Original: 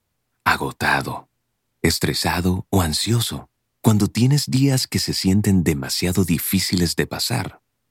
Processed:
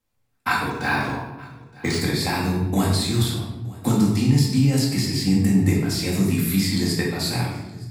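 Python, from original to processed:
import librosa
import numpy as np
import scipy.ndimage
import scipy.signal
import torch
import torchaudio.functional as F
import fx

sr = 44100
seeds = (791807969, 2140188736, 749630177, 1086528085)

y = x + 10.0 ** (-22.0 / 20.0) * np.pad(x, (int(919 * sr / 1000.0), 0))[:len(x)]
y = fx.room_shoebox(y, sr, seeds[0], volume_m3=440.0, walls='mixed', distance_m=2.1)
y = fx.resample_linear(y, sr, factor=3, at=(0.7, 2.01))
y = F.gain(torch.from_numpy(y), -8.5).numpy()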